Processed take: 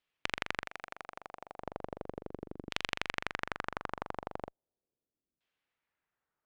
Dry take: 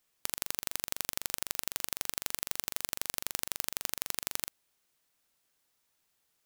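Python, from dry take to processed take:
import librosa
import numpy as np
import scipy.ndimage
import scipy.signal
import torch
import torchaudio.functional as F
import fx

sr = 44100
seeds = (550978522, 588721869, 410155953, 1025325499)

y = fx.ellip_bandstop(x, sr, low_hz=750.0, high_hz=2400.0, order=3, stop_db=40, at=(0.64, 1.59), fade=0.02)
y = fx.cheby_harmonics(y, sr, harmonics=(7,), levels_db=(-15,), full_scale_db=-2.5)
y = fx.filter_lfo_lowpass(y, sr, shape='saw_down', hz=0.37, low_hz=300.0, high_hz=3200.0, q=1.6)
y = y * librosa.db_to_amplitude(5.5)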